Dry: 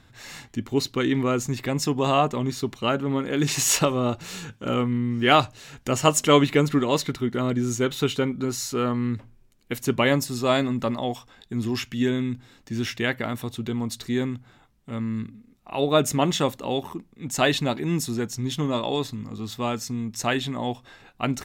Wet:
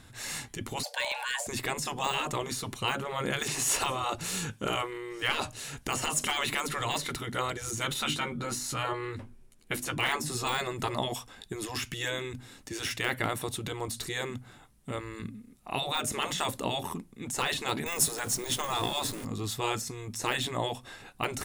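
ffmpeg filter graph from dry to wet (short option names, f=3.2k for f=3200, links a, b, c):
-filter_complex "[0:a]asettb=1/sr,asplit=3[a][b][c];[a]atrim=end=0.834[d];[b]atrim=start=0.83:end=1.47,asetpts=PTS-STARTPTS,afade=t=in:d=0.004:c=qsin,afade=t=out:st=0.636:d=0.004:c=qsin,afreqshift=460,asuperstop=centerf=1300:order=20:qfactor=6.4[e];[c]atrim=start=1.466[f];[d][e]acrossfade=d=0.004:c1=hsin:c2=qsin[g];[g][f]acrossfade=d=0.004:c1=qsin:c2=hsin,asettb=1/sr,asplit=3[h][i][j];[h]atrim=end=7.944[k];[i]atrim=start=7.94:end=10.47,asetpts=PTS-STARTPTS,afade=t=in:d=0.004:c=qsin,afade=t=out:st=2.526:d=0.004:c=qsin,highshelf=f=5.8k:g=-7.5,bandreject=f=50:t=h:w=6,bandreject=f=100:t=h:w=6,bandreject=f=150:t=h:w=6,bandreject=f=200:t=h:w=6,bandreject=f=250:t=h:w=6,bandreject=f=300:t=h:w=6,bandreject=f=350:t=h:w=6,asplit=2[l][m];[m]adelay=13,volume=-7.5dB[n];[l][n]amix=inputs=2:normalize=0,atrim=end_sample=111573[o];[j]atrim=start=10.466[p];[k][o]acrossfade=d=0.004:c1=hsin:c2=qsin[q];[q][p]acrossfade=d=0.004:c1=qsin:c2=hsin,asettb=1/sr,asplit=3[r][s][t];[r]atrim=end=17.864[u];[s]atrim=start=17.86:end=19.25,asetpts=PTS-STARTPTS,afade=t=in:d=0.004:c=qsin,afade=t=out:st=1.386:d=0.004:c=qsin,aeval=exprs='val(0)+0.5*0.01*sgn(val(0))':c=same,highshelf=f=4.7k:g=8.5,acontrast=32[v];[t]atrim=start=19.246[w];[u][v]acrossfade=d=0.004:c1=hsin:c2=qsin[x];[x][w]acrossfade=d=0.004:c1=qsin:c2=hsin,deesser=0.85,afftfilt=real='re*lt(hypot(re,im),0.2)':imag='im*lt(hypot(re,im),0.2)':win_size=1024:overlap=0.75,equalizer=f=9.8k:t=o:w=0.75:g=13,volume=1.5dB"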